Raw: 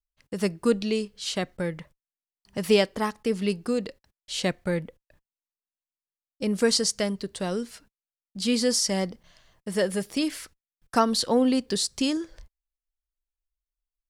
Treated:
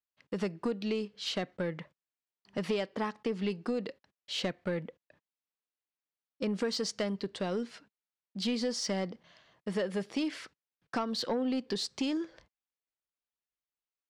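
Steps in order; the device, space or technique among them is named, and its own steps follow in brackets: AM radio (BPF 160–4000 Hz; compressor 6:1, threshold -27 dBFS, peak gain reduction 11.5 dB; soft clip -23 dBFS, distortion -19 dB)

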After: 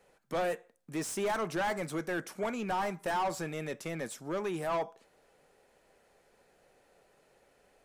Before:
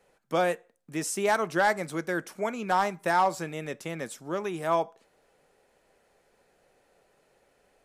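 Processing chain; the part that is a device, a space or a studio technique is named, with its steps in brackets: saturation between pre-emphasis and de-emphasis (high shelf 2600 Hz +11 dB; soft clip -26.5 dBFS, distortion -6 dB; high shelf 2600 Hz -11 dB)

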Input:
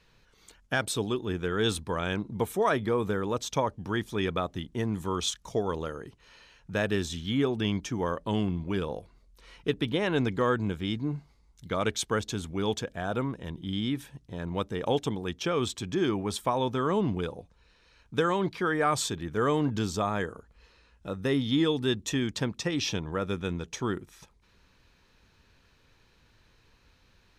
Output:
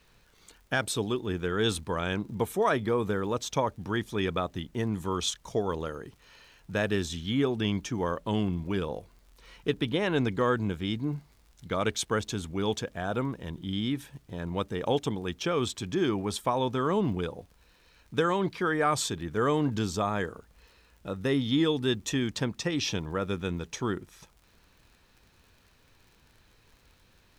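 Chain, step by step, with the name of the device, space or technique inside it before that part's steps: vinyl LP (crackle 59/s -48 dBFS; pink noise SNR 39 dB)

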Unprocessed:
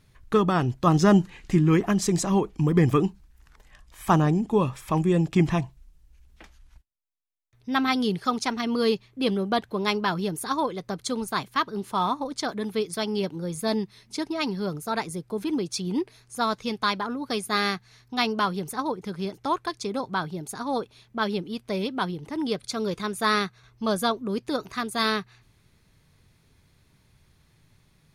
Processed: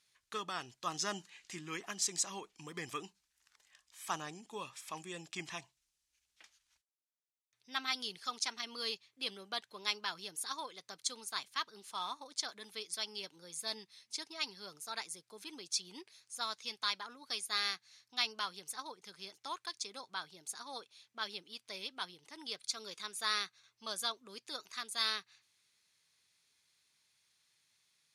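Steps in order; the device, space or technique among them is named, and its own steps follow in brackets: piezo pickup straight into a mixer (LPF 6900 Hz 12 dB/oct; differentiator); gain +1 dB

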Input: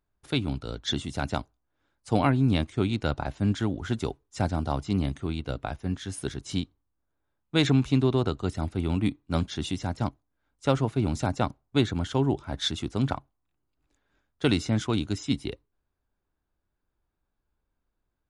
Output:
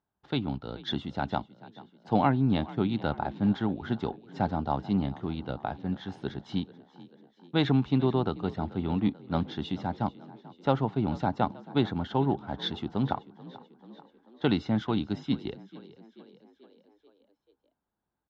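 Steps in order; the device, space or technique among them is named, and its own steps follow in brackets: frequency-shifting delay pedal into a guitar cabinet (frequency-shifting echo 0.437 s, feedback 58%, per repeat +39 Hz, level -19.5 dB; speaker cabinet 87–3900 Hz, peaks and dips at 97 Hz -4 dB, 200 Hz +5 dB, 830 Hz +8 dB, 2400 Hz -7 dB); gain -2.5 dB

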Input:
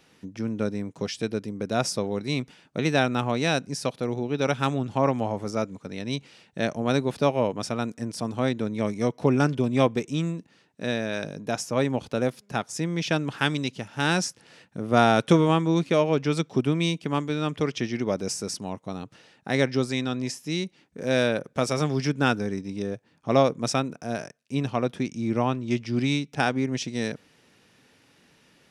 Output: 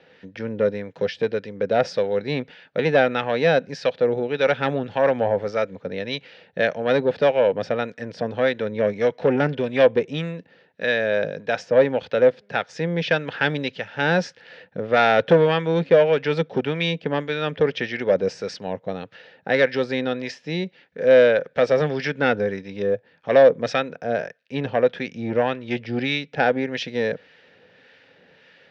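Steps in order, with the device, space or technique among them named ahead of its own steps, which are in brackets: guitar amplifier with harmonic tremolo (harmonic tremolo 1.7 Hz, depth 50%, crossover 980 Hz; soft clip -17.5 dBFS, distortion -14 dB; speaker cabinet 110–4000 Hz, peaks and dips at 130 Hz -8 dB, 220 Hz -7 dB, 320 Hz -9 dB, 510 Hz +9 dB, 1100 Hz -8 dB, 1700 Hz +7 dB); gain +8 dB

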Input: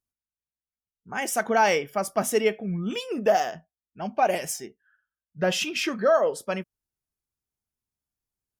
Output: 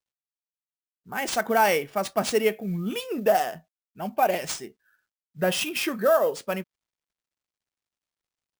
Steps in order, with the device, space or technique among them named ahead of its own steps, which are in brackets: early companding sampler (sample-rate reducer 14000 Hz, jitter 0%; companded quantiser 8-bit)

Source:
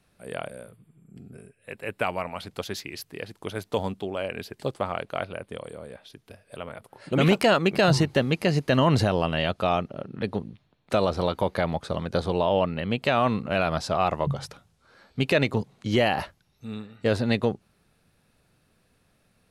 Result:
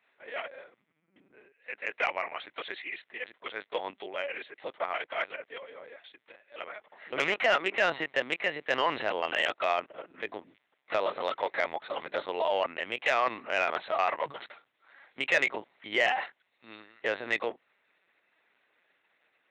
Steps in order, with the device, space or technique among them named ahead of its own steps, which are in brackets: talking toy (LPC vocoder at 8 kHz pitch kept; HPF 580 Hz 12 dB/oct; bell 2000 Hz +10 dB 0.46 oct; soft clip -12 dBFS, distortion -20 dB); gain -2 dB

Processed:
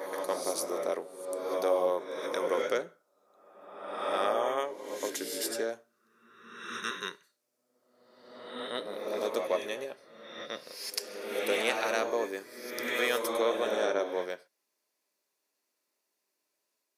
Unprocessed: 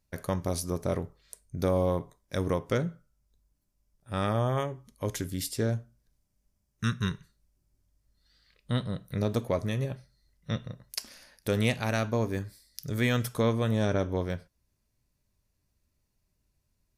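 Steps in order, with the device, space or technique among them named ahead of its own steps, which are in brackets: ghost voice (reverse; reverb RT60 1.4 s, pre-delay 82 ms, DRR 1 dB; reverse; HPF 370 Hz 24 dB/oct)

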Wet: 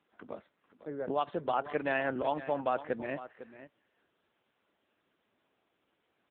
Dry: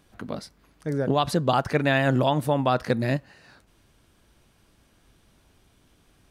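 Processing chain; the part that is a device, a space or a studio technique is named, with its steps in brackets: satellite phone (BPF 330–3200 Hz; echo 0.503 s -14 dB; gain -7 dB; AMR-NB 6.7 kbps 8000 Hz)

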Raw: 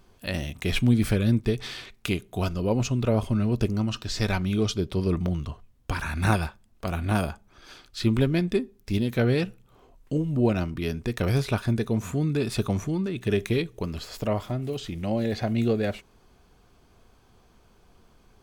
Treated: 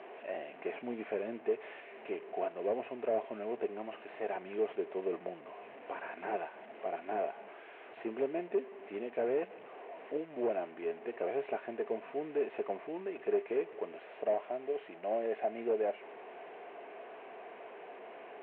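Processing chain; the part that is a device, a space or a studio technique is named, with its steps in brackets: digital answering machine (BPF 320–3400 Hz; delta modulation 16 kbps, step -38 dBFS; speaker cabinet 360–3900 Hz, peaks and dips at 420 Hz +7 dB, 670 Hz +10 dB, 1300 Hz -7 dB, 3400 Hz -8 dB); gain -7 dB

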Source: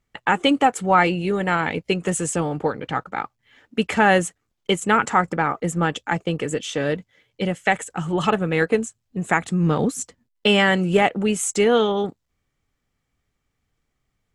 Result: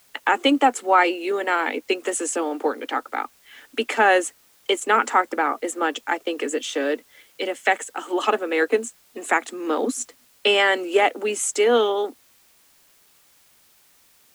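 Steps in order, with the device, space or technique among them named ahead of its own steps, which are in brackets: steep high-pass 240 Hz 96 dB/oct; noise-reduction cassette on a plain deck (mismatched tape noise reduction encoder only; wow and flutter 27 cents; white noise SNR 34 dB)

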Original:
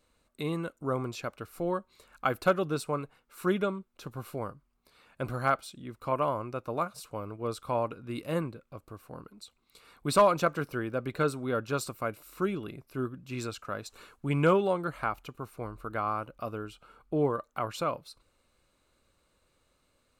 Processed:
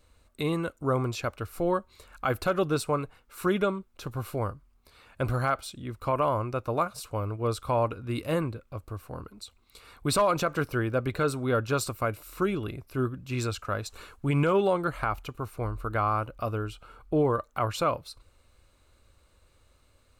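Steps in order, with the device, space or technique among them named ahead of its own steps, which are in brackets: car stereo with a boomy subwoofer (resonant low shelf 120 Hz +7.5 dB, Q 1.5; limiter -20.5 dBFS, peak gain reduction 8 dB); gain +5 dB

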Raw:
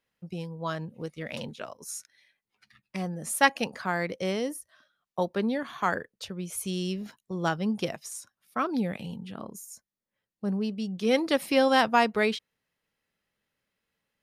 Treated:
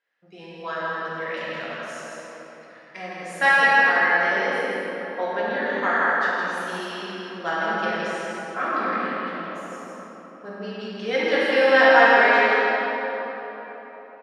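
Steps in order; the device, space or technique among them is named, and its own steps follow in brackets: station announcement (BPF 410–4700 Hz; bell 1700 Hz +11 dB 0.42 oct; loudspeakers at several distances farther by 56 m -5 dB, 83 m -10 dB; reverb RT60 4.1 s, pre-delay 3 ms, DRR -9 dB); gain -4.5 dB

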